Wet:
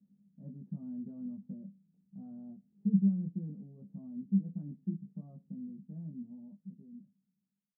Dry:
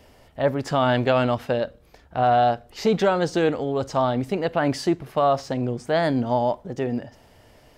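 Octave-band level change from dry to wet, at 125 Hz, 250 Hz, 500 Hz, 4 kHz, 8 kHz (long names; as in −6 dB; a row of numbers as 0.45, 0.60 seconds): −10.5 dB, −8.5 dB, −40.0 dB, below −40 dB, below −35 dB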